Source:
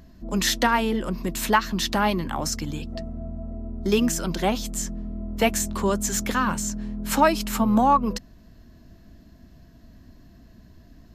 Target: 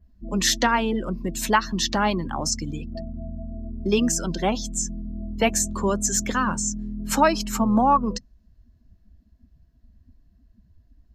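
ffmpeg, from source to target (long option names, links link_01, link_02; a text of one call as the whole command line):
ffmpeg -i in.wav -af "adynamicequalizer=threshold=0.00794:dfrequency=6200:dqfactor=1.3:tfrequency=6200:tqfactor=1.3:attack=5:release=100:ratio=0.375:range=2.5:mode=boostabove:tftype=bell,afftdn=noise_reduction=19:noise_floor=-34" out.wav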